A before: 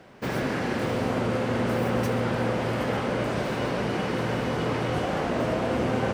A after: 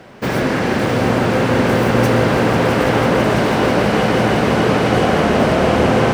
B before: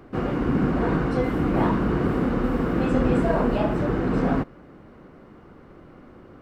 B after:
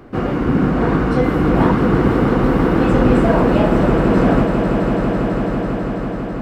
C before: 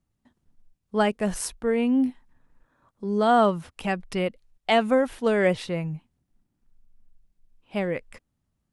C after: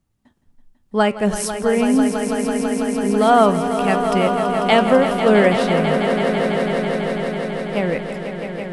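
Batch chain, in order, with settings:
flanger 0.97 Hz, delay 8 ms, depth 3.8 ms, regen +87%
on a send: echo that builds up and dies away 165 ms, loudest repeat 5, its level −10 dB
on the sum: normalise the peak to −1.5 dBFS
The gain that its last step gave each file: +14.5, +11.0, +10.0 decibels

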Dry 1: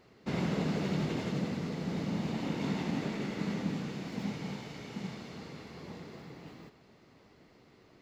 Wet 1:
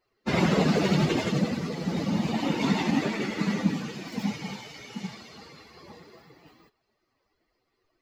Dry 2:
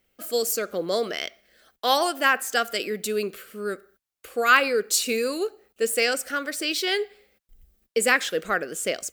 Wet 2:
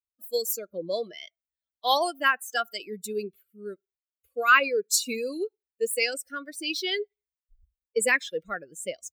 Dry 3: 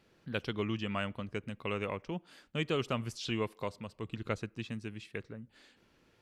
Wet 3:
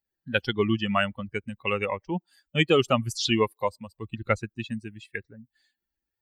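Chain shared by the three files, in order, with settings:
spectral dynamics exaggerated over time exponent 2
low-shelf EQ 240 Hz −6 dB
loudness normalisation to −27 LKFS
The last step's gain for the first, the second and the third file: +16.0, +1.5, +16.0 decibels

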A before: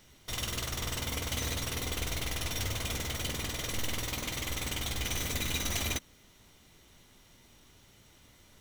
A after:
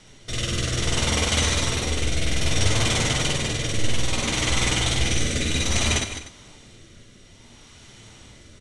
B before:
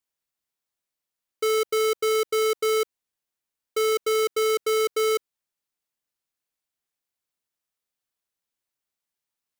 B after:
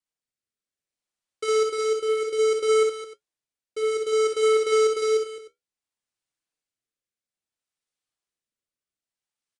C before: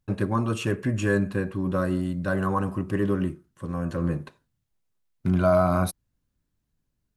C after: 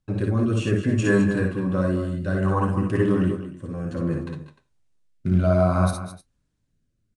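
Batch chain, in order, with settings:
downsampling to 22,050 Hz
flanger 0.31 Hz, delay 6.2 ms, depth 9.7 ms, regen −59%
rotating-speaker cabinet horn 0.6 Hz
multi-tap delay 55/64/190/210/303 ms −5.5/−5.5/−15.5/−10.5/−17.5 dB
loudness normalisation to −23 LKFS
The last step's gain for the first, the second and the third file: +16.0, +2.0, +7.0 decibels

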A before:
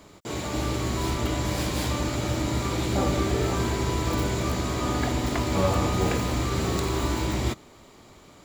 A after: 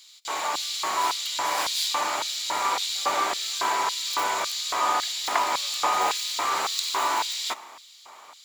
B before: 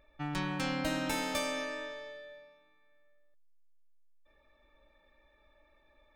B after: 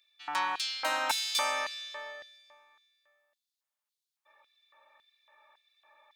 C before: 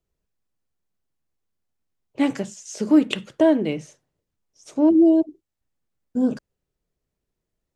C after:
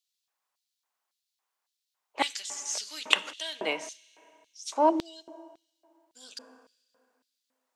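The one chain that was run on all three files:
four-comb reverb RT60 2.1 s, combs from 27 ms, DRR 18 dB
auto-filter high-pass square 1.8 Hz 920–3,900 Hz
level +4 dB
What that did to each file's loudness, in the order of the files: +1.0, +3.5, −9.0 LU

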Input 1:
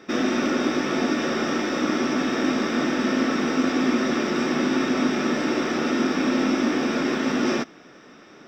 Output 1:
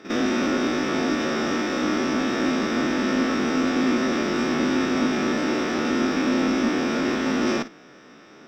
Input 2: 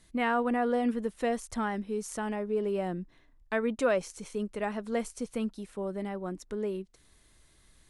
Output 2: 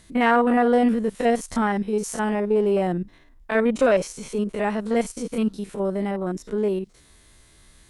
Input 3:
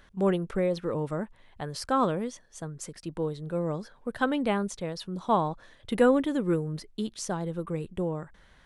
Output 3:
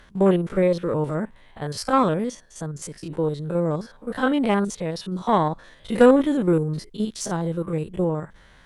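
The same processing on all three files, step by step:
spectrum averaged block by block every 50 ms
harmonic generator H 6 −29 dB, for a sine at −11 dBFS
loudness normalisation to −23 LKFS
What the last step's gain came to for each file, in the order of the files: +1.0, +10.5, +7.5 decibels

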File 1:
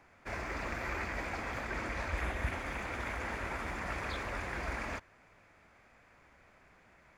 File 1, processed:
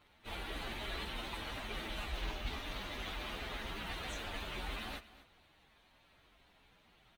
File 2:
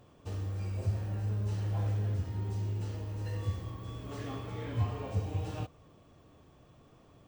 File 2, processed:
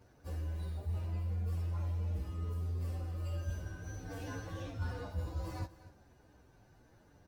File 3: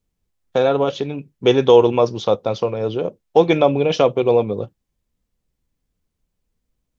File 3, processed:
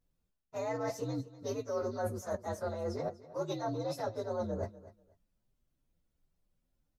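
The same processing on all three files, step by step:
partials spread apart or drawn together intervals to 122%
reversed playback
downward compressor 12 to 1, threshold −33 dBFS
reversed playback
repeating echo 244 ms, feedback 19%, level −17 dB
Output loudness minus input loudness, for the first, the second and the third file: −4.0, −4.0, −20.0 LU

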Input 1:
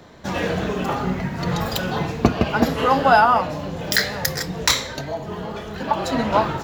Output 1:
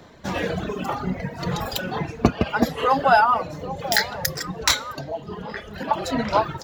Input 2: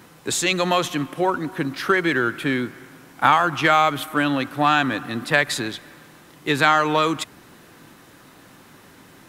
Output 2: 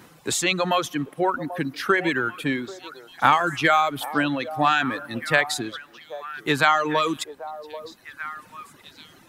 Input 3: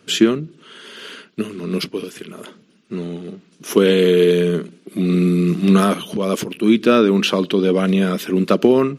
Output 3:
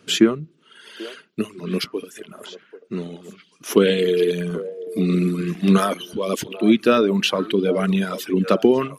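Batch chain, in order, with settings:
reverb reduction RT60 1.9 s
echo through a band-pass that steps 788 ms, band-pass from 610 Hz, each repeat 1.4 octaves, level −10 dB
level −1 dB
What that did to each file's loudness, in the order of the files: −2.0, −2.0, −3.5 LU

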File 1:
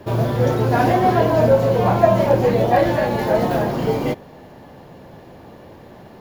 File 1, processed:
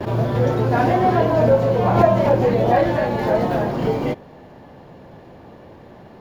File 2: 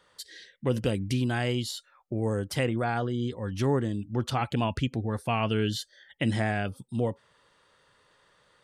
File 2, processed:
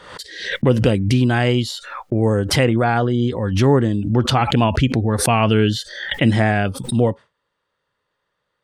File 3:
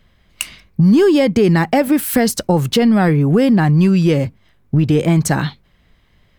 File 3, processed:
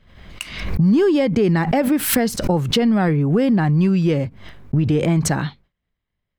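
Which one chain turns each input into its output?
noise gate with hold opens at −40 dBFS
low-pass filter 3,900 Hz 6 dB per octave
background raised ahead of every attack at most 69 dB per second
loudness normalisation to −18 LKFS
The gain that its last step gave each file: −1.0, +11.0, −4.0 decibels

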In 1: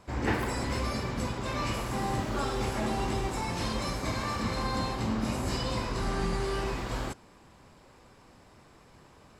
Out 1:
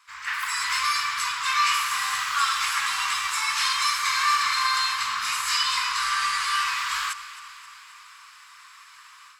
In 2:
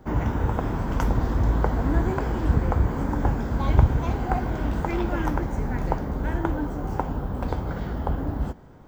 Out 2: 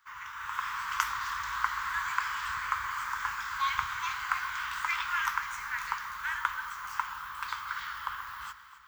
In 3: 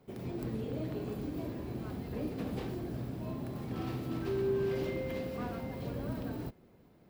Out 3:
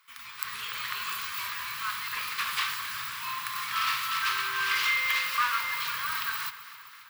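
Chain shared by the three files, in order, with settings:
elliptic high-pass filter 1,100 Hz, stop band 40 dB
automatic gain control gain up to 10.5 dB
delay that swaps between a low-pass and a high-pass 132 ms, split 1,400 Hz, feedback 78%, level −13 dB
normalise the peak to −9 dBFS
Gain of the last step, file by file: +4.0, −3.5, +12.5 decibels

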